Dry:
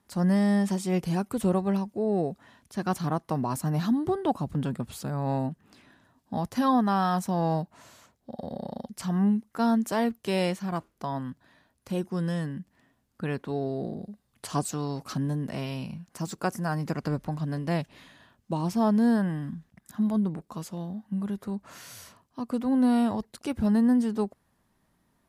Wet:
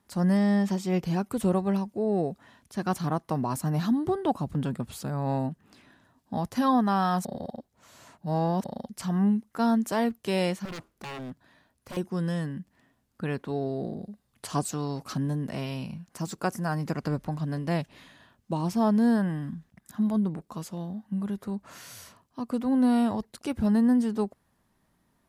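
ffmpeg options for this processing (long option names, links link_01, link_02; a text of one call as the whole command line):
ffmpeg -i in.wav -filter_complex "[0:a]asettb=1/sr,asplit=3[link_01][link_02][link_03];[link_01]atrim=end=0.374[link_04];[link_02]atrim=start=0.37:end=1.25,asetpts=PTS-STARTPTS,afade=type=in:duration=0.004:curve=qsin,afade=type=out:start_time=0.876:duration=0.004:curve=qsin,equalizer=frequency=9700:width_type=o:width=0.5:gain=-11.5[link_05];[link_03]atrim=start=1.246[link_06];[link_04][link_05]acrossfade=duration=0.004:curve1=hsin:curve2=qsin[link_07];[link_07][link_06]acrossfade=duration=0.004:curve1=qsin:curve2=hsin,asettb=1/sr,asplit=3[link_08][link_09][link_10];[link_08]atrim=end=10.654[link_11];[link_09]atrim=start=10.65:end=11.97,asetpts=PTS-STARTPTS,afade=type=in:duration=0.004:curve=qsin,afade=type=out:start_time=1.316:duration=0.004:curve=qsin,aeval=exprs='0.0224*(abs(mod(val(0)/0.0224+3,4)-2)-1)':channel_layout=same[link_12];[link_10]atrim=start=11.966[link_13];[link_11][link_12]acrossfade=duration=0.004:curve1=hsin:curve2=qsin[link_14];[link_14][link_13]acrossfade=duration=0.004:curve1=qsin:curve2=hsin,asplit=3[link_15][link_16][link_17];[link_15]atrim=end=7.252[link_18];[link_16]atrim=start=7.248:end=8.642,asetpts=PTS-STARTPTS,areverse[link_19];[link_17]atrim=start=8.638[link_20];[link_18][link_19]acrossfade=duration=0.004:curve1=hsin:curve2=hsin[link_21];[link_21][link_20]acrossfade=duration=0.004:curve1=hsin:curve2=hsin" out.wav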